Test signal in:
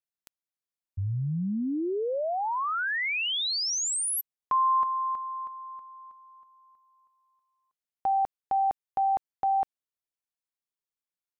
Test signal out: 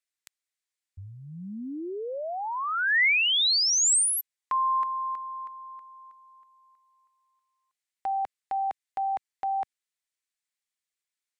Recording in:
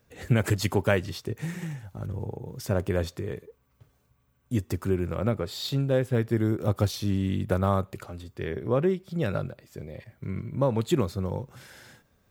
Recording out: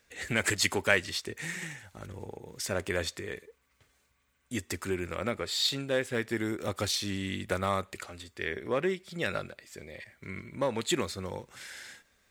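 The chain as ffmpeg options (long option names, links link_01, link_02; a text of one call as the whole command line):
ffmpeg -i in.wav -filter_complex "[0:a]asplit=2[link_01][link_02];[link_02]asoftclip=type=hard:threshold=-16.5dB,volume=-9.5dB[link_03];[link_01][link_03]amix=inputs=2:normalize=0,equalizer=frequency=125:width_type=o:width=1:gain=-11,equalizer=frequency=2000:width_type=o:width=1:gain=11,equalizer=frequency=4000:width_type=o:width=1:gain=6,equalizer=frequency=8000:width_type=o:width=1:gain=11,volume=-7dB" out.wav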